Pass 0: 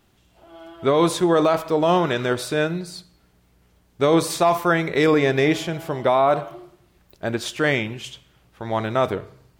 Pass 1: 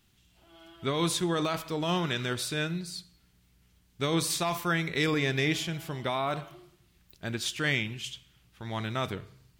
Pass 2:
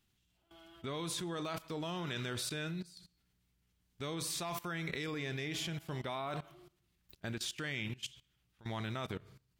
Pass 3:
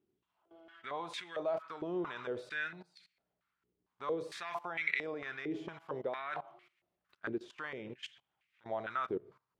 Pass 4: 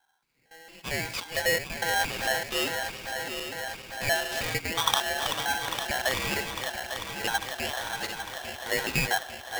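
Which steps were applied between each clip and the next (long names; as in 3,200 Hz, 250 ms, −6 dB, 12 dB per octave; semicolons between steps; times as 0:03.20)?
drawn EQ curve 170 Hz 0 dB, 590 Hz −11 dB, 3,000 Hz +3 dB; level −5 dB
output level in coarse steps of 19 dB; level −1 dB
band-pass on a step sequencer 4.4 Hz 380–2,200 Hz; level +11.5 dB
feedback delay that plays each chunk backwards 425 ms, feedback 83%, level −8 dB; frequency shifter +50 Hz; ring modulator with a square carrier 1,200 Hz; level +9 dB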